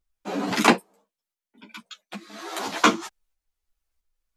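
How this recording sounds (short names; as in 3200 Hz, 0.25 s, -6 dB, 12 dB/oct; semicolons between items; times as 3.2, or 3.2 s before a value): tremolo saw up 1.5 Hz, depth 45%; a shimmering, thickened sound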